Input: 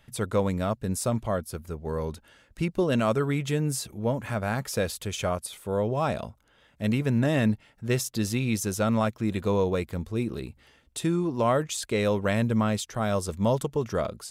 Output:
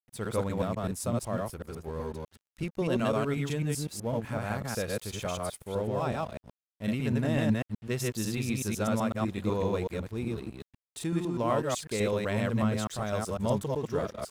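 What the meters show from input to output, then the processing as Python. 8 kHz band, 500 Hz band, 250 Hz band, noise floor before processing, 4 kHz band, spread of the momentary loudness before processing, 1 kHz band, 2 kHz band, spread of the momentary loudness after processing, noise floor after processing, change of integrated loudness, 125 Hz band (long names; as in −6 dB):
−4.5 dB, −4.0 dB, −3.5 dB, −62 dBFS, −4.0 dB, 8 LU, −3.5 dB, −4.0 dB, 9 LU, below −85 dBFS, −4.0 dB, −3.5 dB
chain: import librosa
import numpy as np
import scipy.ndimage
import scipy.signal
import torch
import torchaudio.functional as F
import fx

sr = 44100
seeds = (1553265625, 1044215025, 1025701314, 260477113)

y = fx.reverse_delay(x, sr, ms=125, wet_db=-0.5)
y = np.sign(y) * np.maximum(np.abs(y) - 10.0 ** (-45.0 / 20.0), 0.0)
y = y * 10.0 ** (-6.0 / 20.0)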